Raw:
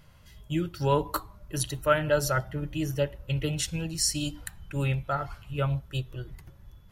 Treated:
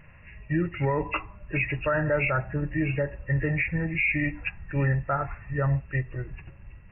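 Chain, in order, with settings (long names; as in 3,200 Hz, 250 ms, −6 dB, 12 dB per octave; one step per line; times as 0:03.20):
hearing-aid frequency compression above 1,600 Hz 4 to 1
brickwall limiter −20.5 dBFS, peak gain reduction 11 dB
level +4 dB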